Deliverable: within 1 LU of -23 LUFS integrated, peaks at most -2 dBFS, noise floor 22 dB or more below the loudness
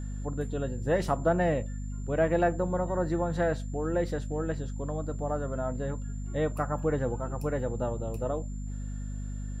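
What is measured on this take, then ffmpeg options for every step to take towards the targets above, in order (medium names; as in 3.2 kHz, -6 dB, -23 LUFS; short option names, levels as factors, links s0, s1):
hum 50 Hz; highest harmonic 250 Hz; hum level -33 dBFS; steady tone 7.2 kHz; tone level -55 dBFS; loudness -31.0 LUFS; peak level -14.0 dBFS; loudness target -23.0 LUFS
-> -af "bandreject=f=50:t=h:w=6,bandreject=f=100:t=h:w=6,bandreject=f=150:t=h:w=6,bandreject=f=200:t=h:w=6,bandreject=f=250:t=h:w=6"
-af "bandreject=f=7200:w=30"
-af "volume=2.51"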